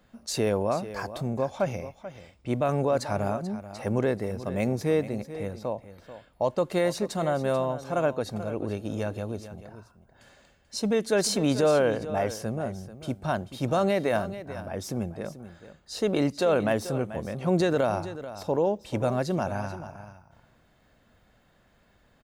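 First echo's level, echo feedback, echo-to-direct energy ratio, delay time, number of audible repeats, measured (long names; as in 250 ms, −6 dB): −13.5 dB, repeats not evenly spaced, −13.5 dB, 437 ms, 1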